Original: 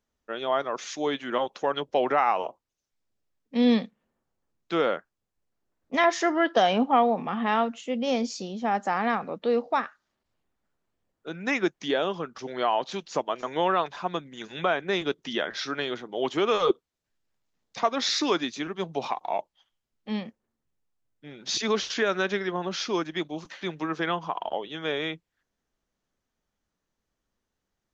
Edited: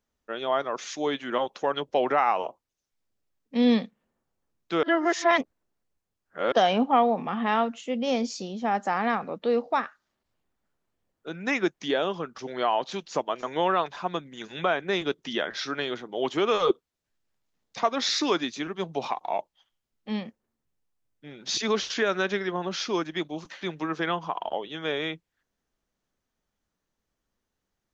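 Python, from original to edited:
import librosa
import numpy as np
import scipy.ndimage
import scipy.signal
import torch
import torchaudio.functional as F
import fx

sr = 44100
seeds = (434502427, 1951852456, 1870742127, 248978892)

y = fx.edit(x, sr, fx.reverse_span(start_s=4.83, length_s=1.69), tone=tone)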